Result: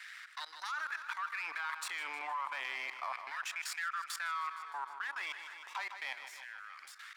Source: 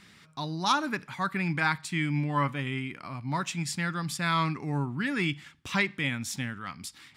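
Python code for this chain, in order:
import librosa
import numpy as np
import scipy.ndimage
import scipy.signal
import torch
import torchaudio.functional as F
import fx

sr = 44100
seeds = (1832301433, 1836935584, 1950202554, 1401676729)

y = np.where(x < 0.0, 10.0 ** (-12.0 / 20.0) * x, x)
y = fx.doppler_pass(y, sr, speed_mps=5, closest_m=4.5, pass_at_s=2.21)
y = scipy.signal.sosfilt(scipy.signal.butter(2, 430.0, 'highpass', fs=sr, output='sos'), y)
y = fx.peak_eq(y, sr, hz=1200.0, db=3.0, octaves=1.9)
y = fx.level_steps(y, sr, step_db=24)
y = fx.filter_lfo_highpass(y, sr, shape='saw_down', hz=0.32, low_hz=770.0, high_hz=1700.0, q=3.2)
y = fx.echo_feedback(y, sr, ms=155, feedback_pct=58, wet_db=-17)
y = fx.env_flatten(y, sr, amount_pct=50)
y = y * librosa.db_to_amplitude(2.5)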